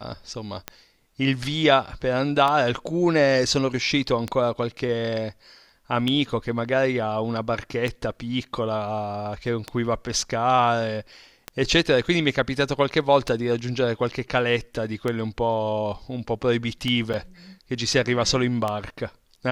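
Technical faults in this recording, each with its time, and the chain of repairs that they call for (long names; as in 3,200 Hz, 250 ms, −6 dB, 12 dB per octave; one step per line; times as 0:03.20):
scratch tick 33 1/3 rpm −12 dBFS
0:17.13–0:17.14: drop-out 7 ms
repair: click removal
repair the gap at 0:17.13, 7 ms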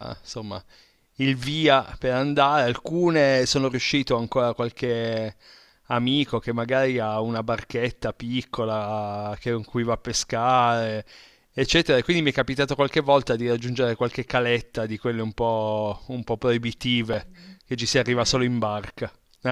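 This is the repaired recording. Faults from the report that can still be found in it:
none of them is left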